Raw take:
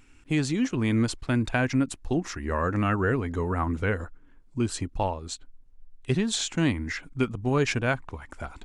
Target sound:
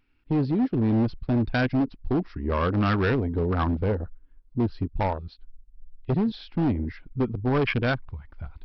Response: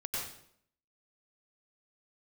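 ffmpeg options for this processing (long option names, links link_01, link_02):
-af "afwtdn=0.0398,aresample=11025,asoftclip=type=hard:threshold=-23dB,aresample=44100,volume=4dB"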